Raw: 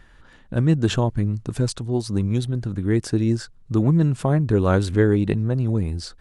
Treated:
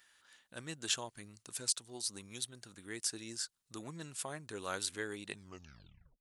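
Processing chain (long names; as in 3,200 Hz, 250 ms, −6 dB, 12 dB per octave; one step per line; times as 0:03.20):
turntable brake at the end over 0.89 s
first difference
level +1 dB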